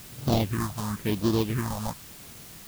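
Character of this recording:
aliases and images of a low sample rate 1,400 Hz, jitter 20%
phaser sweep stages 4, 0.97 Hz, lowest notch 340–2,100 Hz
a quantiser's noise floor 8 bits, dither triangular

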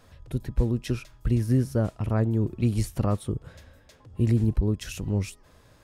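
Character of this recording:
background noise floor −57 dBFS
spectral slope −9.5 dB per octave

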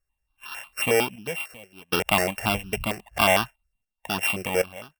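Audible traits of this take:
a buzz of ramps at a fixed pitch in blocks of 16 samples
sample-and-hold tremolo 2.6 Hz, depth 95%
notches that jump at a steady rate 11 Hz 920–2,100 Hz

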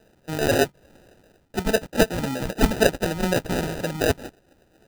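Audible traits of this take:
phaser sweep stages 8, 4 Hz, lowest notch 460–1,300 Hz
aliases and images of a low sample rate 1,100 Hz, jitter 0%

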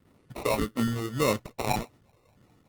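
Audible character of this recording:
phaser sweep stages 8, 1.7 Hz, lowest notch 200–1,500 Hz
aliases and images of a low sample rate 1,600 Hz, jitter 0%
Opus

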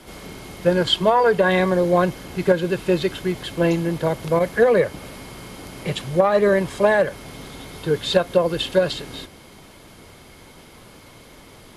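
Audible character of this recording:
background noise floor −46 dBFS
spectral slope −4.0 dB per octave

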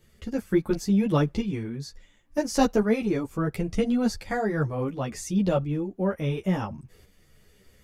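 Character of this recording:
tremolo saw up 0.71 Hz, depth 50%
a shimmering, thickened sound

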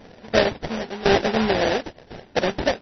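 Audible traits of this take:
aliases and images of a low sample rate 1,200 Hz, jitter 20%
tremolo saw down 0.95 Hz, depth 85%
MP3

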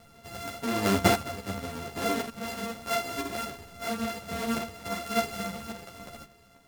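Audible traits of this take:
a buzz of ramps at a fixed pitch in blocks of 64 samples
sample-and-hold tremolo
a shimmering, thickened sound

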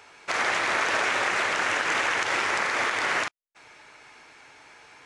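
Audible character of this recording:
background noise floor −63 dBFS
spectral slope −1.0 dB per octave

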